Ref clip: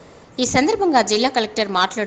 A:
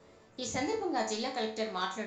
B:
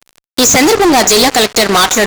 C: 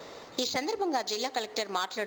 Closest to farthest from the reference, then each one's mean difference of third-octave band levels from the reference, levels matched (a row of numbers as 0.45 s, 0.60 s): A, C, B; 3.0 dB, 7.0 dB, 10.0 dB